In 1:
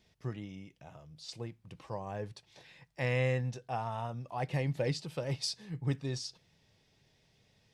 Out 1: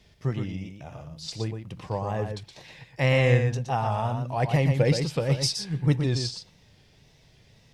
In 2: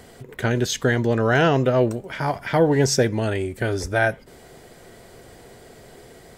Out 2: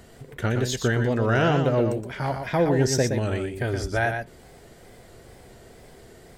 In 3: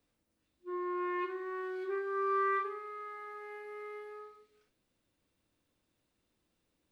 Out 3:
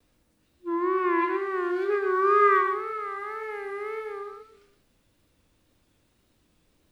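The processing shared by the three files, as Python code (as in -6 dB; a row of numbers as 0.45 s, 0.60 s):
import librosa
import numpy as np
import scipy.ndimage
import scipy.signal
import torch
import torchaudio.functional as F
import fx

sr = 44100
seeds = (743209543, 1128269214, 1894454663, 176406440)

y = fx.wow_flutter(x, sr, seeds[0], rate_hz=2.1, depth_cents=94.0)
y = fx.low_shelf(y, sr, hz=100.0, db=7.0)
y = y + 10.0 ** (-6.5 / 20.0) * np.pad(y, (int(119 * sr / 1000.0), 0))[:len(y)]
y = librosa.util.normalize(y) * 10.0 ** (-9 / 20.0)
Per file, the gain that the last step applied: +8.5 dB, -4.5 dB, +10.0 dB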